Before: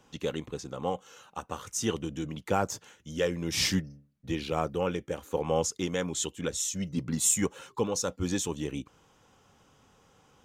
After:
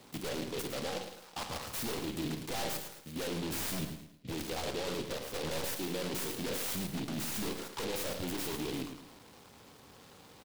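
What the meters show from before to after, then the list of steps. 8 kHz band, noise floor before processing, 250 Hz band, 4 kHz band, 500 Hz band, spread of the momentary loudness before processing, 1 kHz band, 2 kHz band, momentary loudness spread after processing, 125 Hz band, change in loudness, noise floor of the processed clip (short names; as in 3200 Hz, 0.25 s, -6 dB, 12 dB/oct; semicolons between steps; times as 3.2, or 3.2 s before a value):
-10.0 dB, -63 dBFS, -5.5 dB, -3.5 dB, -7.0 dB, 13 LU, -6.5 dB, -3.0 dB, 19 LU, -6.5 dB, -6.0 dB, -57 dBFS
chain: spectral trails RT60 0.31 s; HPF 99 Hz 6 dB/oct; bell 3400 Hz -6 dB 1 oct; harmonic-percussive split percussive +7 dB; dynamic EQ 2000 Hz, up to -7 dB, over -45 dBFS, Q 1.4; level quantiser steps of 12 dB; tube stage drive 33 dB, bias 0.35; wavefolder -36.5 dBFS; doubler 38 ms -12.5 dB; feedback echo 0.109 s, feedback 37%, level -8 dB; noise-modulated delay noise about 3000 Hz, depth 0.13 ms; gain +4 dB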